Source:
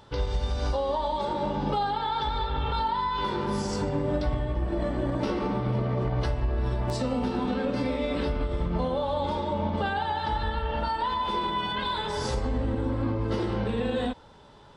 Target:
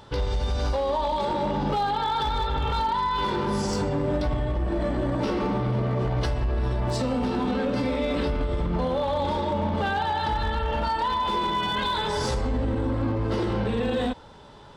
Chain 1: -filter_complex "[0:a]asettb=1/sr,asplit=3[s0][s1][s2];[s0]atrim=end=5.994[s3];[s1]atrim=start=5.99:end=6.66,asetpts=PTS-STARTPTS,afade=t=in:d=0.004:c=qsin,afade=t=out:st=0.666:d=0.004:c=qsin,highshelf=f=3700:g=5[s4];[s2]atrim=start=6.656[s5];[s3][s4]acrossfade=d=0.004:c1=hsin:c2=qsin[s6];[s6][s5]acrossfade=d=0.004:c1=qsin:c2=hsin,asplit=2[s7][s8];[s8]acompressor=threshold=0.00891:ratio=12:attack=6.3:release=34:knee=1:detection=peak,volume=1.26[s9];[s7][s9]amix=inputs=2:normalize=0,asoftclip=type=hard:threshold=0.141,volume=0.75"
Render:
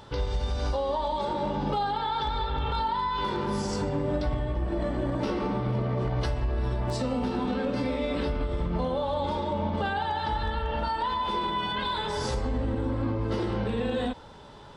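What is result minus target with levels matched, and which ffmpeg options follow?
compression: peak gain reduction +10.5 dB
-filter_complex "[0:a]asettb=1/sr,asplit=3[s0][s1][s2];[s0]atrim=end=5.994[s3];[s1]atrim=start=5.99:end=6.66,asetpts=PTS-STARTPTS,afade=t=in:d=0.004:c=qsin,afade=t=out:st=0.666:d=0.004:c=qsin,highshelf=f=3700:g=5[s4];[s2]atrim=start=6.656[s5];[s3][s4]acrossfade=d=0.004:c1=hsin:c2=qsin[s6];[s6][s5]acrossfade=d=0.004:c1=qsin:c2=hsin,asplit=2[s7][s8];[s8]acompressor=threshold=0.0335:ratio=12:attack=6.3:release=34:knee=1:detection=peak,volume=1.26[s9];[s7][s9]amix=inputs=2:normalize=0,asoftclip=type=hard:threshold=0.141,volume=0.75"

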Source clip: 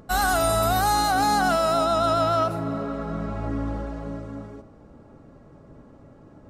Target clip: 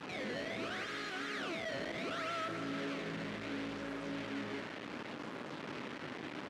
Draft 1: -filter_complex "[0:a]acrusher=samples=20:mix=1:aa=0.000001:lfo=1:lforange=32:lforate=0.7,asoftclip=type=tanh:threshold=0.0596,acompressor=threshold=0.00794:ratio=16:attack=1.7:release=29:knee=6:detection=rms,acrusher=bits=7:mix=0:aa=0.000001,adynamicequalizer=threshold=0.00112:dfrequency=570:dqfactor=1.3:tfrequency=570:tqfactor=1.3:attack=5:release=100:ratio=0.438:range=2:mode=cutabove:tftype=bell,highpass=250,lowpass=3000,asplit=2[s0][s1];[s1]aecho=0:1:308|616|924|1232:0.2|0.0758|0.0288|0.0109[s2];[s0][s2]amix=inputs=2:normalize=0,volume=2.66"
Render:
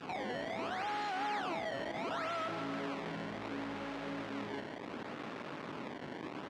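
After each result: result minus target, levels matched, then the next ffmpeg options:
1 kHz band +5.0 dB; saturation: distortion -4 dB
-filter_complex "[0:a]acrusher=samples=20:mix=1:aa=0.000001:lfo=1:lforange=32:lforate=0.7,asoftclip=type=tanh:threshold=0.0596,acompressor=threshold=0.00794:ratio=16:attack=1.7:release=29:knee=6:detection=rms,asuperstop=centerf=890:order=4:qfactor=1.5,acrusher=bits=7:mix=0:aa=0.000001,adynamicequalizer=threshold=0.00112:dfrequency=570:dqfactor=1.3:tfrequency=570:tqfactor=1.3:attack=5:release=100:ratio=0.438:range=2:mode=cutabove:tftype=bell,highpass=250,lowpass=3000,asplit=2[s0][s1];[s1]aecho=0:1:308|616|924|1232:0.2|0.0758|0.0288|0.0109[s2];[s0][s2]amix=inputs=2:normalize=0,volume=2.66"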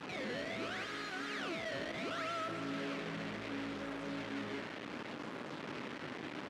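saturation: distortion -4 dB
-filter_complex "[0:a]acrusher=samples=20:mix=1:aa=0.000001:lfo=1:lforange=32:lforate=0.7,asoftclip=type=tanh:threshold=0.0299,acompressor=threshold=0.00794:ratio=16:attack=1.7:release=29:knee=6:detection=rms,asuperstop=centerf=890:order=4:qfactor=1.5,acrusher=bits=7:mix=0:aa=0.000001,adynamicequalizer=threshold=0.00112:dfrequency=570:dqfactor=1.3:tfrequency=570:tqfactor=1.3:attack=5:release=100:ratio=0.438:range=2:mode=cutabove:tftype=bell,highpass=250,lowpass=3000,asplit=2[s0][s1];[s1]aecho=0:1:308|616|924|1232:0.2|0.0758|0.0288|0.0109[s2];[s0][s2]amix=inputs=2:normalize=0,volume=2.66"

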